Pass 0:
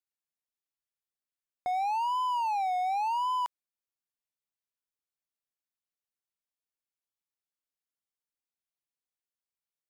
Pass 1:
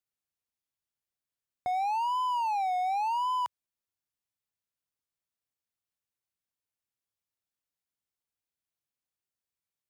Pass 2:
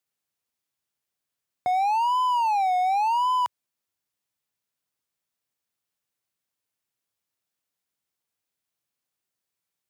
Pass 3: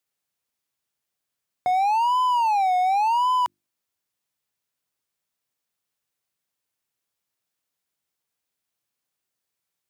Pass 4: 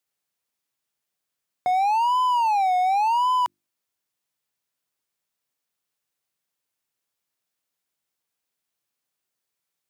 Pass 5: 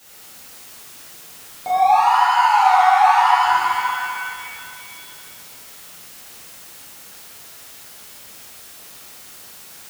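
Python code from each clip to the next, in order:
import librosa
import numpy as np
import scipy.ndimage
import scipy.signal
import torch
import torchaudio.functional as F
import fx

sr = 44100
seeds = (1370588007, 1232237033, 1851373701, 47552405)

y1 = fx.peak_eq(x, sr, hz=99.0, db=8.5, octaves=1.5)
y2 = scipy.signal.sosfilt(scipy.signal.butter(2, 98.0, 'highpass', fs=sr, output='sos'), y1)
y2 = y2 * librosa.db_to_amplitude(6.5)
y3 = fx.hum_notches(y2, sr, base_hz=50, count=7)
y3 = y3 * librosa.db_to_amplitude(2.0)
y4 = fx.low_shelf(y3, sr, hz=75.0, db=-8.0)
y5 = y4 + 0.5 * 10.0 ** (-40.5 / 20.0) * np.sign(y4)
y5 = fx.rev_shimmer(y5, sr, seeds[0], rt60_s=2.4, semitones=7, shimmer_db=-8, drr_db=-11.0)
y5 = y5 * librosa.db_to_amplitude(-5.0)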